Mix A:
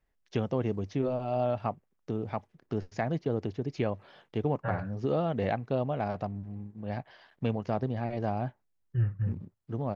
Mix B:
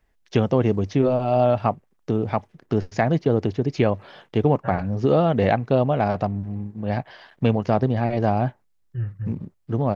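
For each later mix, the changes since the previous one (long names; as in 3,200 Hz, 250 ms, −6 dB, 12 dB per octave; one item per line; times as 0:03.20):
first voice +10.5 dB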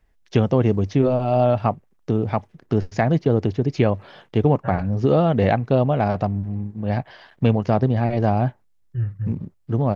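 master: add low-shelf EQ 160 Hz +5 dB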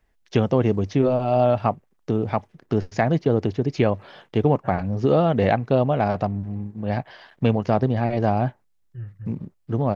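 second voice −7.5 dB
master: add low-shelf EQ 160 Hz −5 dB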